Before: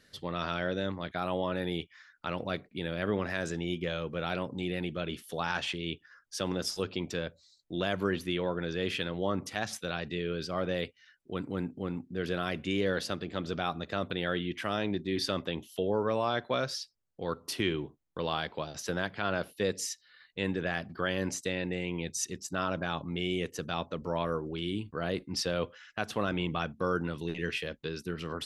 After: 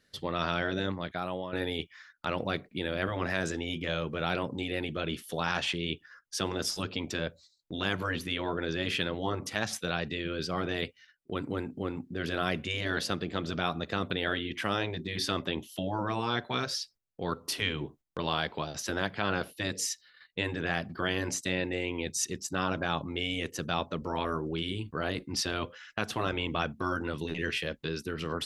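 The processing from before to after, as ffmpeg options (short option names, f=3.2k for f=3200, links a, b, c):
-filter_complex "[0:a]asplit=2[a][b];[a]atrim=end=1.53,asetpts=PTS-STARTPTS,afade=t=out:st=0.83:d=0.7:silence=0.251189[c];[b]atrim=start=1.53,asetpts=PTS-STARTPTS,afade=t=in:d=0.004:c=hsin:silence=0.251189[d];[c][d]concat=n=2:v=0:a=1,afftfilt=real='re*lt(hypot(re,im),0.141)':imag='im*lt(hypot(re,im),0.141)':win_size=1024:overlap=0.75,agate=range=-10dB:threshold=-57dB:ratio=16:detection=peak,volume=3.5dB"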